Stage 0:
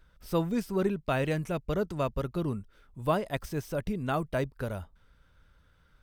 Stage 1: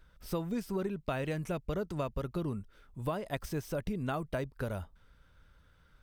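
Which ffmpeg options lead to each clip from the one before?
-af "acompressor=threshold=-30dB:ratio=10"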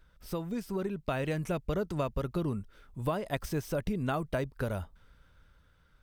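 -af "dynaudnorm=f=210:g=9:m=4dB,volume=-1dB"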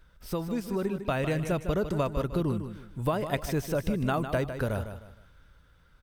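-af "aecho=1:1:154|308|462:0.335|0.104|0.0322,volume=3.5dB"

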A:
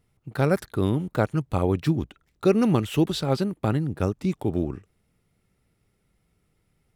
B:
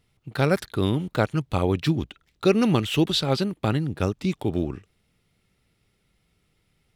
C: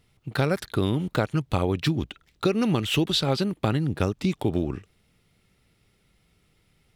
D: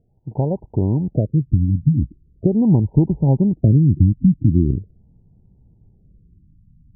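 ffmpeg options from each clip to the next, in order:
-af "equalizer=f=3.5k:t=o:w=1.6:g=8.5"
-af "acompressor=threshold=-23dB:ratio=6,volume=3.5dB"
-af "asubboost=boost=5:cutoff=250,asuperstop=centerf=1500:order=20:qfactor=1.1,afftfilt=real='re*lt(b*sr/1024,290*pow(1600/290,0.5+0.5*sin(2*PI*0.41*pts/sr)))':imag='im*lt(b*sr/1024,290*pow(1600/290,0.5+0.5*sin(2*PI*0.41*pts/sr)))':win_size=1024:overlap=0.75,volume=2.5dB"

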